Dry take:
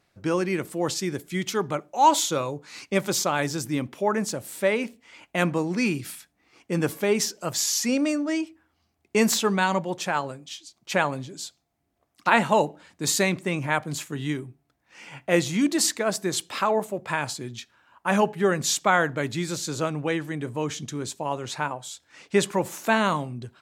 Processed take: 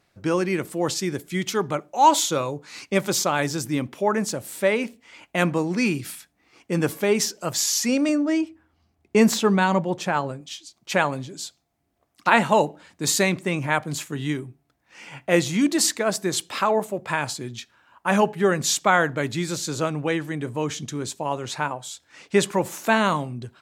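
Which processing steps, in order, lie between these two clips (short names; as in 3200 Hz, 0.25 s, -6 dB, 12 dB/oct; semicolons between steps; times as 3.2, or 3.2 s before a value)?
8.09–10.41 tilt -1.5 dB/oct; gain +2 dB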